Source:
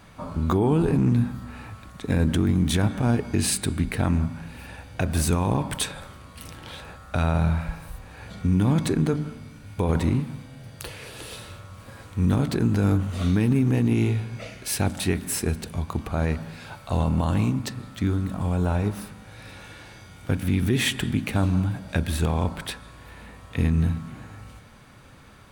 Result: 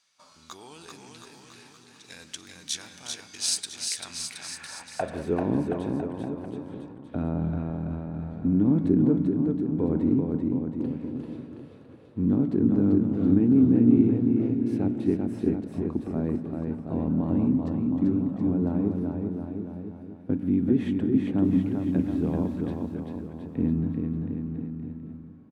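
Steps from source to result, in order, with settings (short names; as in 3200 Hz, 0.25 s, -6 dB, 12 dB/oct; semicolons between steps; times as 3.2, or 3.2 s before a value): gate -40 dBFS, range -9 dB; 21.43–22.55 added noise blue -34 dBFS; band-pass sweep 5600 Hz -> 280 Hz, 3.95–5.51; on a send: bouncing-ball echo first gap 0.39 s, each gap 0.85×, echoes 5; on the sum: gain +5 dB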